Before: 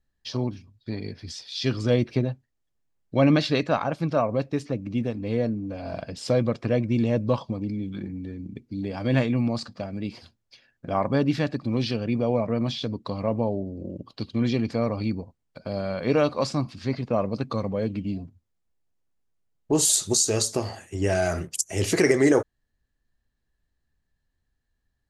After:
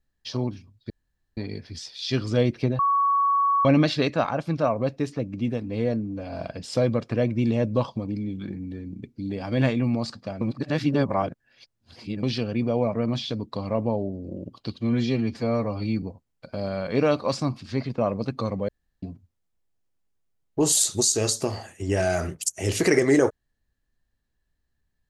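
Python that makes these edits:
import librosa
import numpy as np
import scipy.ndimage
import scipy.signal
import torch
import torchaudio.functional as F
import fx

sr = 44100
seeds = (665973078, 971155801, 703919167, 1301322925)

y = fx.edit(x, sr, fx.insert_room_tone(at_s=0.9, length_s=0.47),
    fx.bleep(start_s=2.32, length_s=0.86, hz=1120.0, db=-18.0),
    fx.reverse_span(start_s=9.94, length_s=1.82),
    fx.stretch_span(start_s=14.34, length_s=0.81, factor=1.5),
    fx.room_tone_fill(start_s=17.81, length_s=0.34), tone=tone)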